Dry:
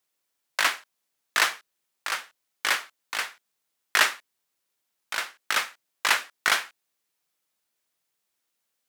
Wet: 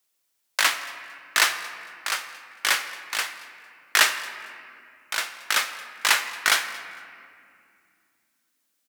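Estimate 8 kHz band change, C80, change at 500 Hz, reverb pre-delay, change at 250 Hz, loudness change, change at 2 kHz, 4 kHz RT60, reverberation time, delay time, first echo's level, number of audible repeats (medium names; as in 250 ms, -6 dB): +5.5 dB, 11.0 dB, +1.0 dB, 3 ms, +1.0 dB, +2.5 dB, +2.0 dB, 1.4 s, 2.4 s, 226 ms, -22.0 dB, 1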